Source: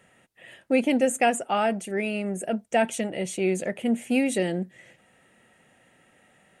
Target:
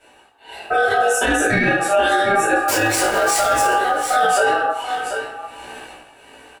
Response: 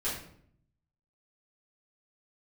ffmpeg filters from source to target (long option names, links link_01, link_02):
-filter_complex "[0:a]asettb=1/sr,asplit=3[link_01][link_02][link_03];[link_01]atrim=end=2.684[link_04];[link_02]atrim=start=2.68:end=3.63,asetpts=PTS-STARTPTS,afade=type=in:duration=0.004:curve=qsin,afade=type=out:start_time=0.946:duration=0.004:curve=qsin,aeval=exprs='val(0)+0.5*0.0422*sgn(val(0))':channel_layout=same[link_05];[link_03]atrim=start=3.626[link_06];[link_04][link_05]acrossfade=duration=0.004:curve1=hsin:curve2=qsin[link_07];[link_07][link_06]acrossfade=duration=0.004:curve1=qsin:curve2=hsin,bandreject=frequency=790:width=12,tremolo=f=1.4:d=0.72,acompressor=threshold=-34dB:ratio=4,highpass=frequency=43:poles=1[link_08];[1:a]atrim=start_sample=2205,afade=type=out:start_time=0.41:duration=0.01,atrim=end_sample=18522[link_09];[link_08][link_09]afir=irnorm=-1:irlink=0,dynaudnorm=framelen=150:gausssize=9:maxgain=13dB,aeval=exprs='val(0)*sin(2*PI*1000*n/s)':channel_layout=same,superequalizer=10b=0.447:13b=0.562,aecho=1:1:736:0.2,flanger=delay=16:depth=3:speed=0.51,alimiter=level_in=19dB:limit=-1dB:release=50:level=0:latency=1,volume=-6.5dB"